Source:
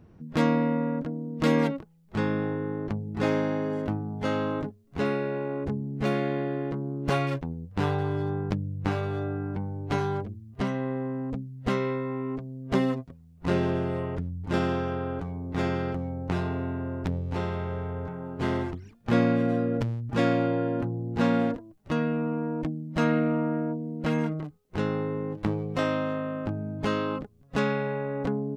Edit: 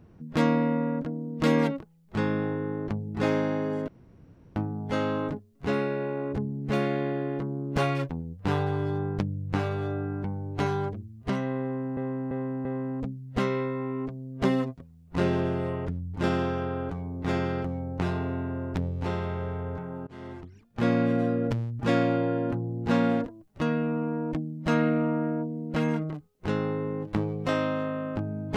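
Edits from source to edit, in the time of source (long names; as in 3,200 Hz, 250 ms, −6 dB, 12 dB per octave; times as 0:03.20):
0:03.88: splice in room tone 0.68 s
0:10.95–0:11.29: repeat, 4 plays
0:18.37–0:19.40: fade in, from −23.5 dB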